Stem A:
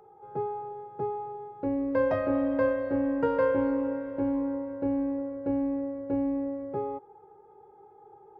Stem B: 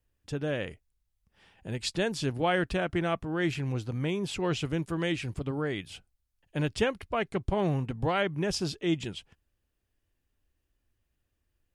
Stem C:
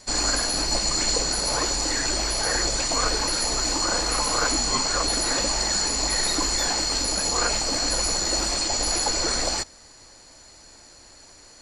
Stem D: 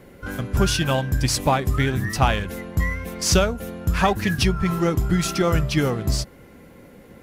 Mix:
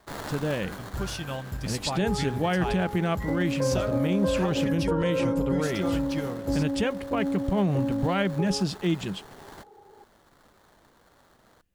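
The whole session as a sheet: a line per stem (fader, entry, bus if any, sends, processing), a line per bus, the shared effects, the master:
+0.5 dB, 1.65 s, no send, low-pass filter 1,100 Hz
+2.0 dB, 0.00 s, no send, parametric band 190 Hz +11 dB 0.33 octaves
−7.5 dB, 0.00 s, muted 0:04.67–0:05.67, no send, first difference; sample-rate reduction 2,600 Hz, jitter 20%; automatic ducking −12 dB, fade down 1.40 s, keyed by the second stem
−12.5 dB, 0.40 s, no send, no processing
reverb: not used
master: brickwall limiter −16 dBFS, peak gain reduction 6 dB

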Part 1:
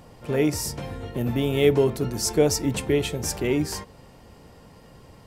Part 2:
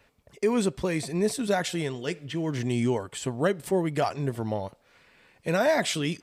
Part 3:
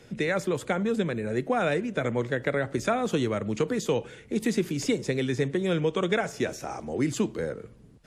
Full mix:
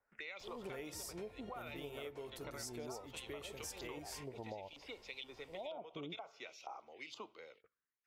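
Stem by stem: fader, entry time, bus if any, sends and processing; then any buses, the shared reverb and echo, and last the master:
−4.0 dB, 0.40 s, no send, automatic ducking −8 dB, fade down 1.60 s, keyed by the second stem
+0.5 dB, 0.00 s, no send, Butterworth low-pass 940 Hz 72 dB per octave; low-shelf EQ 91 Hz −6.5 dB; volume swells 624 ms
+1.0 dB, 0.00 s, no send, auto-filter band-pass saw up 2.1 Hz 930–3,200 Hz; phaser swept by the level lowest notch 530 Hz, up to 1,700 Hz, full sweep at −43 dBFS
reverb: not used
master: noise gate −58 dBFS, range −18 dB; parametric band 170 Hz −13.5 dB 2.5 octaves; downward compressor 12 to 1, threshold −43 dBFS, peak gain reduction 16 dB

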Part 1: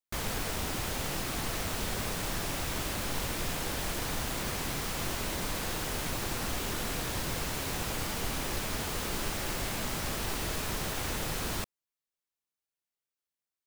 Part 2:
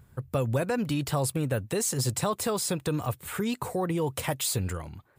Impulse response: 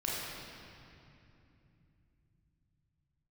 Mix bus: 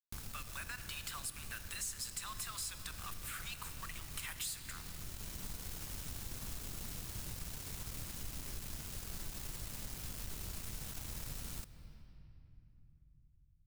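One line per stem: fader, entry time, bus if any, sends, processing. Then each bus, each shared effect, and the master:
−16.5 dB, 0.00 s, send −20 dB, bass and treble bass +11 dB, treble +12 dB; bit reduction 4 bits; automatic ducking −9 dB, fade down 0.35 s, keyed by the second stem
−2.5 dB, 0.00 s, send −14 dB, inverse Chebyshev high-pass filter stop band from 220 Hz, stop band 80 dB; bit reduction 7 bits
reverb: on, RT60 2.8 s, pre-delay 28 ms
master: low-shelf EQ 170 Hz +4.5 dB; downward compressor 2.5 to 1, threshold −43 dBFS, peak gain reduction 11 dB

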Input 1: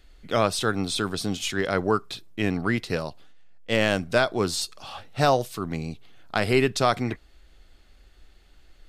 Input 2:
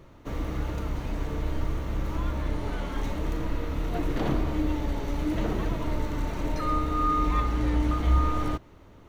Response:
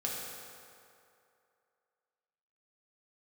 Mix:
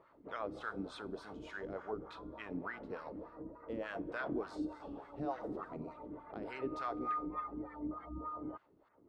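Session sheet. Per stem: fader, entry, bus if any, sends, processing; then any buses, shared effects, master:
−10.0 dB, 0.00 s, send −12 dB, downward compressor 2.5 to 1, threshold −25 dBFS, peak gain reduction 7 dB
−1.5 dB, 0.00 s, no send, gate on every frequency bin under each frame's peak −30 dB strong; automatic ducking −7 dB, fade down 0.40 s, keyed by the first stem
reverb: on, RT60 2.6 s, pre-delay 3 ms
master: LFO wah 3.4 Hz 280–1,500 Hz, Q 2

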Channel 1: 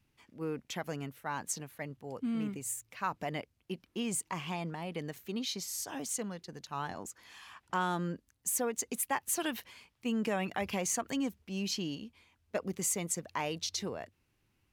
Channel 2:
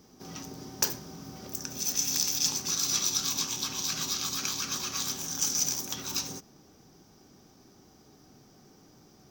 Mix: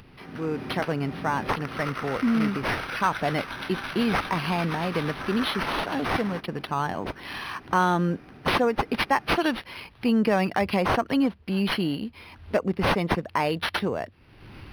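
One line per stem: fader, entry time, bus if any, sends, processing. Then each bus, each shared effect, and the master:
+1.0 dB, 0.00 s, no send, upward compression, threshold −34 dBFS
−1.0 dB, 0.00 s, no send, downward compressor 6 to 1, threshold −39 dBFS, peak gain reduction 17 dB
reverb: not used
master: automatic gain control gain up to 10 dB; linearly interpolated sample-rate reduction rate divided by 6×

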